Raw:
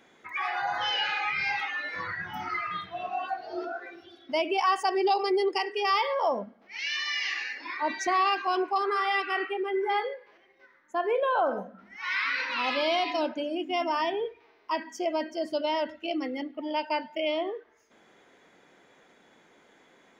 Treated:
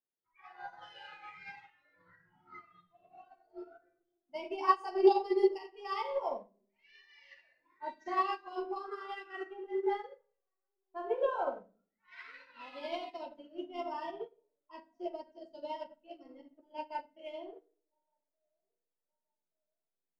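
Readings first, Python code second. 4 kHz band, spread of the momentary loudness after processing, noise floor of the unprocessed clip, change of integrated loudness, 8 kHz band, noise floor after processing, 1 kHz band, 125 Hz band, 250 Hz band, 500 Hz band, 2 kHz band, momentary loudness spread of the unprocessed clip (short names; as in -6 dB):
-19.0 dB, 22 LU, -61 dBFS, -6.5 dB, under -20 dB, under -85 dBFS, -9.5 dB, n/a, -6.5 dB, -5.5 dB, -18.0 dB, 10 LU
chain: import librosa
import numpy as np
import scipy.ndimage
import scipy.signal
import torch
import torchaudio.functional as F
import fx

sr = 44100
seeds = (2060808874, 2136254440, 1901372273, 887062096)

p1 = fx.echo_banded(x, sr, ms=1173, feedback_pct=44, hz=800.0, wet_db=-23.0)
p2 = fx.noise_reduce_blind(p1, sr, reduce_db=10)
p3 = fx.high_shelf(p2, sr, hz=2100.0, db=-6.5)
p4 = fx.backlash(p3, sr, play_db=-37.0)
p5 = p3 + F.gain(torch.from_numpy(p4), -8.0).numpy()
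p6 = fx.env_lowpass(p5, sr, base_hz=1400.0, full_db=-23.0)
p7 = fx.room_shoebox(p6, sr, seeds[0], volume_m3=68.0, walls='mixed', distance_m=0.83)
p8 = fx.upward_expand(p7, sr, threshold_db=-33.0, expansion=2.5)
y = F.gain(torch.from_numpy(p8), -4.5).numpy()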